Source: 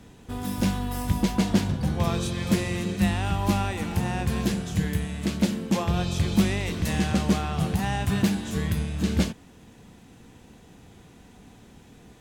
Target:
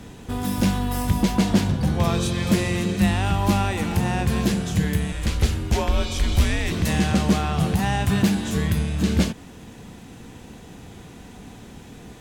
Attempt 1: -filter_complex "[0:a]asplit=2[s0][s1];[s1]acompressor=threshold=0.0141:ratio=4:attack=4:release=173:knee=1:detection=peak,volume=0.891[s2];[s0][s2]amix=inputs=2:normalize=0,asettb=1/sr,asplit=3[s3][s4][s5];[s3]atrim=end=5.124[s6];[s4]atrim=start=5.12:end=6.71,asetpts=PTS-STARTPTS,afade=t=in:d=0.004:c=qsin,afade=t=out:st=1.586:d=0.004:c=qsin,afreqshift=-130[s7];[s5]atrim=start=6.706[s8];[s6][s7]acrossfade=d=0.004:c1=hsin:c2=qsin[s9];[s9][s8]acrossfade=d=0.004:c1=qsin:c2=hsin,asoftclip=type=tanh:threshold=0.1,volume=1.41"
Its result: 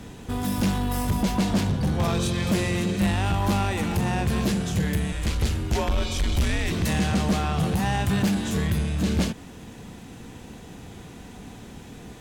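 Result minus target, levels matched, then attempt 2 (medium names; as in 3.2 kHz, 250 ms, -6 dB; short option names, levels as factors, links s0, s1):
saturation: distortion +14 dB
-filter_complex "[0:a]asplit=2[s0][s1];[s1]acompressor=threshold=0.0141:ratio=4:attack=4:release=173:knee=1:detection=peak,volume=0.891[s2];[s0][s2]amix=inputs=2:normalize=0,asettb=1/sr,asplit=3[s3][s4][s5];[s3]atrim=end=5.124[s6];[s4]atrim=start=5.12:end=6.71,asetpts=PTS-STARTPTS,afade=t=in:d=0.004:c=qsin,afade=t=out:st=1.586:d=0.004:c=qsin,afreqshift=-130[s7];[s5]atrim=start=6.706[s8];[s6][s7]acrossfade=d=0.004:c1=hsin:c2=qsin[s9];[s9][s8]acrossfade=d=0.004:c1=qsin:c2=hsin,asoftclip=type=tanh:threshold=0.355,volume=1.41"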